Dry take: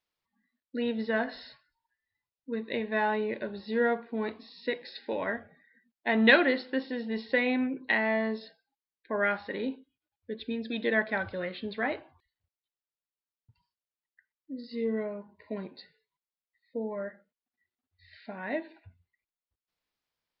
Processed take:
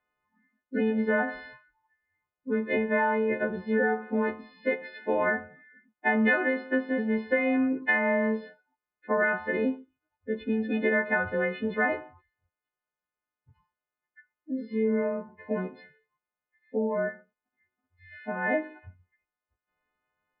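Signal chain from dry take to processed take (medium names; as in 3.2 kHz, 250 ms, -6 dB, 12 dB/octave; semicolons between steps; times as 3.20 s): partials quantised in pitch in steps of 3 st; low-pass 1.9 kHz 24 dB/octave; compression 6:1, threshold -29 dBFS, peak gain reduction 14.5 dB; trim +7.5 dB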